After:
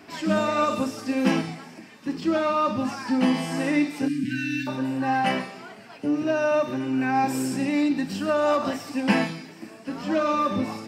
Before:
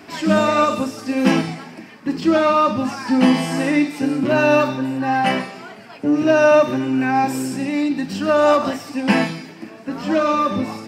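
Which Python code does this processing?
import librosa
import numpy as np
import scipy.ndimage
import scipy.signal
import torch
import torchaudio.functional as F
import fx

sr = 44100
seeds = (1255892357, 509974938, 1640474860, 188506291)

y = fx.rider(x, sr, range_db=10, speed_s=0.5)
y = fx.brickwall_bandstop(y, sr, low_hz=330.0, high_hz=1500.0, at=(4.08, 4.67))
y = fx.echo_wet_highpass(y, sr, ms=771, feedback_pct=56, hz=4100.0, wet_db=-16.0)
y = y * librosa.db_to_amplitude(-6.0)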